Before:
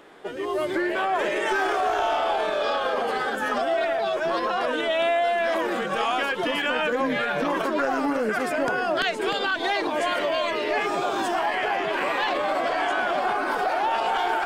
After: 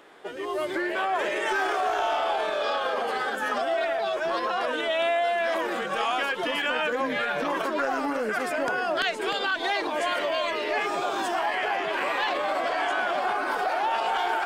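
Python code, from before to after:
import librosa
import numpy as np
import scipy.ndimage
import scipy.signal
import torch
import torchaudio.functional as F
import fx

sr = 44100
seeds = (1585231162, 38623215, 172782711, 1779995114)

y = fx.low_shelf(x, sr, hz=310.0, db=-7.5)
y = F.gain(torch.from_numpy(y), -1.0).numpy()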